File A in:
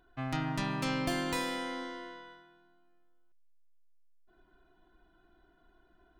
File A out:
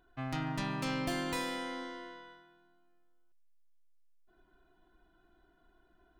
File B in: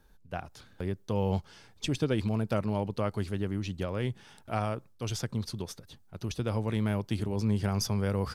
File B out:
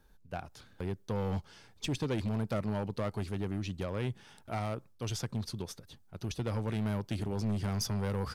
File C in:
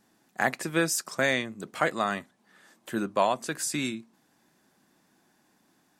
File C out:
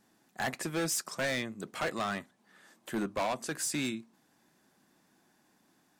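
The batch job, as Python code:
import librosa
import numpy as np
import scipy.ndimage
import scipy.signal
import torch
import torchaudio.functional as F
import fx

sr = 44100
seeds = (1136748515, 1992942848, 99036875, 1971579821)

y = np.clip(x, -10.0 ** (-25.5 / 20.0), 10.0 ** (-25.5 / 20.0))
y = y * librosa.db_to_amplitude(-2.0)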